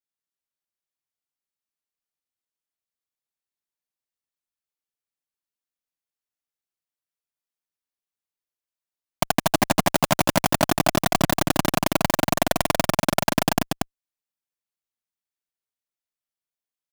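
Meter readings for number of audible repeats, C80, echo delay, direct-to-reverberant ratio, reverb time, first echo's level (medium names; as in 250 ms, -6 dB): 1, no reverb, 235 ms, no reverb, no reverb, -4.0 dB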